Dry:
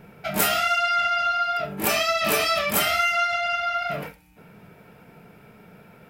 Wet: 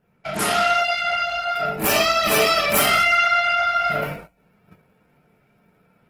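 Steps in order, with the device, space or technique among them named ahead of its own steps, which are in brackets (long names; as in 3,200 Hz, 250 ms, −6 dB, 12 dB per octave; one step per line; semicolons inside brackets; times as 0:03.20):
speakerphone in a meeting room (convolution reverb RT60 0.65 s, pre-delay 18 ms, DRR −1 dB; automatic gain control gain up to 4 dB; noise gate −36 dBFS, range −17 dB; level −1.5 dB; Opus 16 kbit/s 48,000 Hz)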